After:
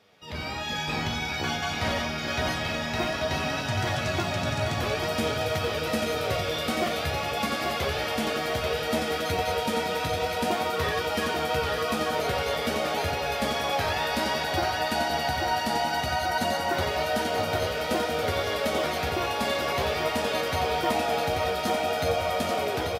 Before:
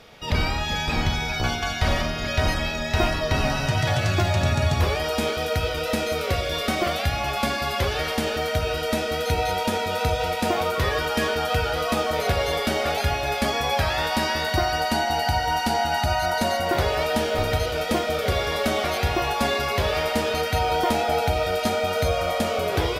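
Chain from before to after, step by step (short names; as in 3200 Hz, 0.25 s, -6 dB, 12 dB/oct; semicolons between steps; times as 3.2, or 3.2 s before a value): HPF 110 Hz 12 dB/oct; AGC gain up to 9.5 dB; flange 0.54 Hz, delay 9.4 ms, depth 10 ms, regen +37%; on a send: feedback echo 0.838 s, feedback 56%, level -5.5 dB; on the sum: gain -8.5 dB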